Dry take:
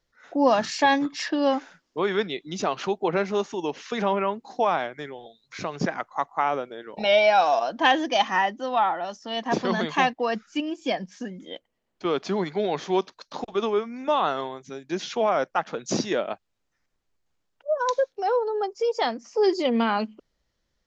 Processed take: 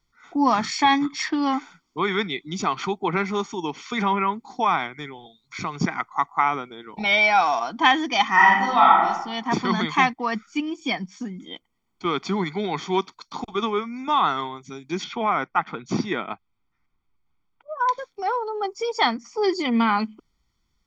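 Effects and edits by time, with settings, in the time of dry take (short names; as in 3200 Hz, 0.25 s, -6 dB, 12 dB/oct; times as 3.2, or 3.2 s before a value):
8.34–9.06 reverb throw, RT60 0.87 s, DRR -4 dB
15.04–17.98 LPF 3100 Hz
18.65–19.16 gain +3 dB
whole clip: dynamic EQ 1800 Hz, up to +8 dB, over -45 dBFS, Q 3.1; comb 0.9 ms, depth 82%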